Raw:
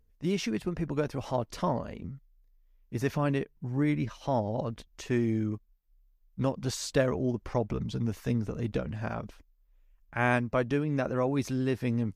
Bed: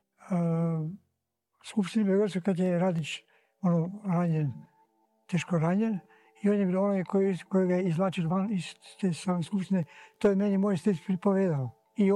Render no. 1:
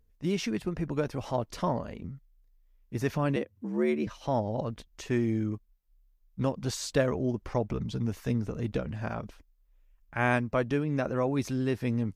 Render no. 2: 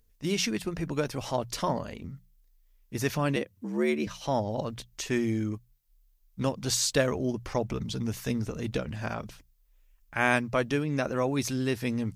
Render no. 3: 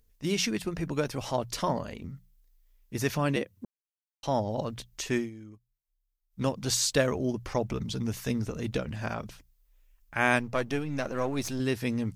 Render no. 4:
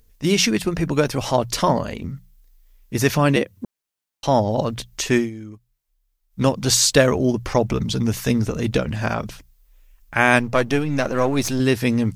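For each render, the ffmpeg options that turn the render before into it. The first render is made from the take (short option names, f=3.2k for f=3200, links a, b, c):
-filter_complex "[0:a]asettb=1/sr,asplit=3[a][b][c];[a]atrim=end=3.364[d];[b]atrim=start=3.36:end=4.07,asetpts=PTS-STARTPTS,afade=t=in:d=0.004:c=qsin,afade=t=out:st=0.706:d=0.004:c=qsin,afreqshift=74[e];[c]atrim=start=4.066[f];[d][e]acrossfade=d=0.004:c1=hsin:c2=qsin[g];[g][f]acrossfade=d=0.004:c1=qsin:c2=hsin"
-af "highshelf=f=2.5k:g=11,bandreject=f=60:t=h:w=6,bandreject=f=120:t=h:w=6,bandreject=f=180:t=h:w=6"
-filter_complex "[0:a]asettb=1/sr,asplit=3[a][b][c];[a]atrim=end=10.394[d];[b]atrim=start=10.39:end=11.6,asetpts=PTS-STARTPTS,afade=t=in:d=0.004:c=qsin,afade=t=out:st=1.206:d=0.004:c=qsin,aeval=exprs='if(lt(val(0),0),0.447*val(0),val(0))':c=same[e];[c]atrim=start=11.596[f];[d][e]acrossfade=d=0.004:c1=hsin:c2=qsin[g];[g][f]acrossfade=d=0.004:c1=qsin:c2=hsin,asplit=5[h][i][j][k][l];[h]atrim=end=3.65,asetpts=PTS-STARTPTS,afade=t=out:st=3.646:d=0.004:c=hsin[m];[i]atrim=start=3.65:end=4.23,asetpts=PTS-STARTPTS,volume=0[n];[j]atrim=start=4.23:end=5.3,asetpts=PTS-STARTPTS,afade=t=in:d=0.004:c=hsin,afade=t=out:st=0.93:d=0.14:silence=0.158489[o];[k]atrim=start=5.3:end=6.29,asetpts=PTS-STARTPTS,volume=-16dB[p];[l]atrim=start=6.29,asetpts=PTS-STARTPTS,afade=t=in:d=0.14:silence=0.158489[q];[m][n][o][p][q]concat=n=5:v=0:a=1"
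-af "volume=10.5dB,alimiter=limit=-2dB:level=0:latency=1"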